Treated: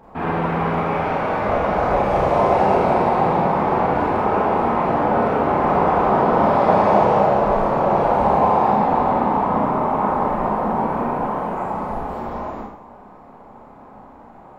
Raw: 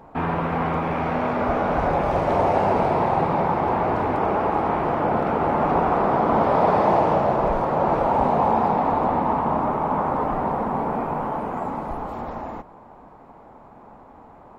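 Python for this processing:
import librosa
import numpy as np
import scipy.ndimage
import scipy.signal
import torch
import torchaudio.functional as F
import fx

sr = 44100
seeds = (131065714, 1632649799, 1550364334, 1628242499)

y = fx.rev_schroeder(x, sr, rt60_s=0.65, comb_ms=30, drr_db=-4.0)
y = F.gain(torch.from_numpy(y), -2.0).numpy()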